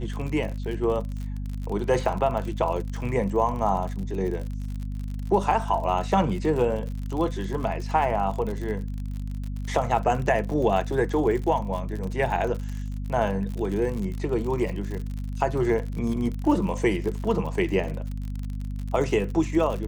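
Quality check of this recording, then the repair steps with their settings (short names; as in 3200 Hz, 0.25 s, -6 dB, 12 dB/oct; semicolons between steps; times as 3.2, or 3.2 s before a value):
crackle 54/s -31 dBFS
hum 50 Hz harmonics 5 -31 dBFS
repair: de-click; de-hum 50 Hz, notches 5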